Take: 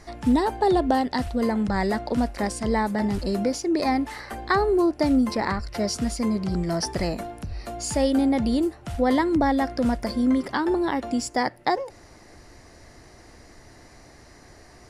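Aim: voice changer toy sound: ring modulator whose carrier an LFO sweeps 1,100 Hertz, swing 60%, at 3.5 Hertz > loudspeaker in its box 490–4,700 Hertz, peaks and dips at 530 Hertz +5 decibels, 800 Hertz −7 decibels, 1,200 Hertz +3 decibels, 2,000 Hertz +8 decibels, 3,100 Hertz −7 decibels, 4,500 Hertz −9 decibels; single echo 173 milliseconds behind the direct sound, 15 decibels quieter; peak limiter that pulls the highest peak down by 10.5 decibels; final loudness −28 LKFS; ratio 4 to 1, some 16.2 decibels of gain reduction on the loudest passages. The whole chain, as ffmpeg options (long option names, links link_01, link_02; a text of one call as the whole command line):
ffmpeg -i in.wav -af "acompressor=threshold=-37dB:ratio=4,alimiter=level_in=6.5dB:limit=-24dB:level=0:latency=1,volume=-6.5dB,aecho=1:1:173:0.178,aeval=exprs='val(0)*sin(2*PI*1100*n/s+1100*0.6/3.5*sin(2*PI*3.5*n/s))':channel_layout=same,highpass=490,equalizer=frequency=530:width_type=q:width=4:gain=5,equalizer=frequency=800:width_type=q:width=4:gain=-7,equalizer=frequency=1200:width_type=q:width=4:gain=3,equalizer=frequency=2000:width_type=q:width=4:gain=8,equalizer=frequency=3100:width_type=q:width=4:gain=-7,equalizer=frequency=4500:width_type=q:width=4:gain=-9,lowpass=frequency=4700:width=0.5412,lowpass=frequency=4700:width=1.3066,volume=10.5dB" out.wav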